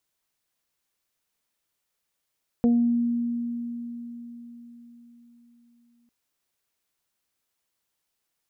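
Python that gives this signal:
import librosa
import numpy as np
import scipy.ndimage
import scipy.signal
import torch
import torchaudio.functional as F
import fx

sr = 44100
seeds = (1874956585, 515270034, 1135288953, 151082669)

y = fx.additive(sr, length_s=3.45, hz=237.0, level_db=-16.0, upper_db=(-7.0, -19.5), decay_s=4.53, upper_decays_s=(0.28, 0.56))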